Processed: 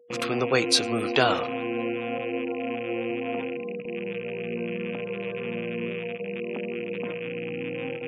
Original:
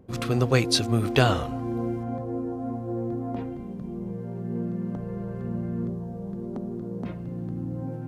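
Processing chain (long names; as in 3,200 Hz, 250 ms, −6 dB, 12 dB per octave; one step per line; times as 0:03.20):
loose part that buzzes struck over −35 dBFS, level −28 dBFS
steady tone 480 Hz −34 dBFS
high-pass filter 180 Hz 12 dB per octave
in parallel at −5.5 dB: soft clipping −22 dBFS, distortion −10 dB
on the sum: noise gate with hold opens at −20 dBFS
low-shelf EQ 240 Hz −9.5 dB
delay with a high-pass on its return 348 ms, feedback 47%, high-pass 4,600 Hz, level −23 dB
on a send at −23.5 dB: convolution reverb RT60 2.1 s, pre-delay 5 ms
on the sum: gate on every frequency bin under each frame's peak −30 dB strong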